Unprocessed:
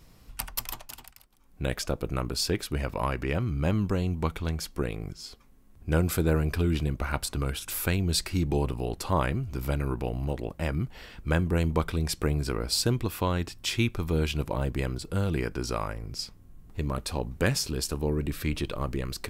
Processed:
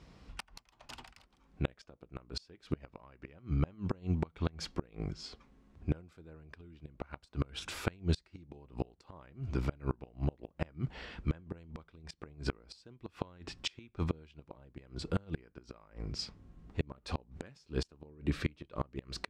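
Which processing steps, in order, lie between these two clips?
high-pass 47 Hz 12 dB/octave; peaking EQ 110 Hz -9 dB 0.24 oct; inverted gate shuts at -20 dBFS, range -29 dB; distance through air 120 m; trim +1 dB

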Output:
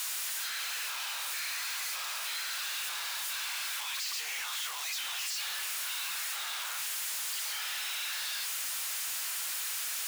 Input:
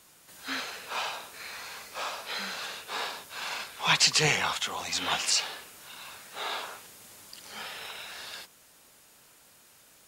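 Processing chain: one-bit comparator; high-pass 1.4 kHz 12 dB/octave; trim -1 dB

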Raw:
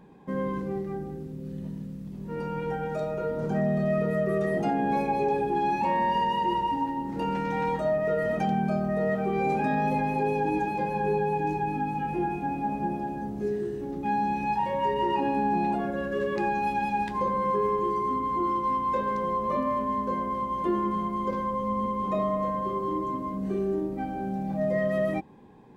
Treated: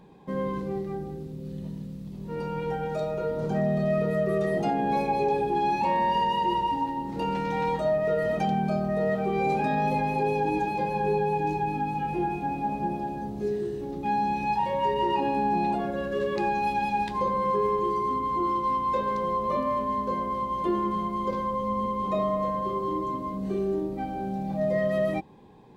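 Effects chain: fifteen-band graphic EQ 250 Hz -4 dB, 1.6 kHz -4 dB, 4 kHz +5 dB; trim +1.5 dB

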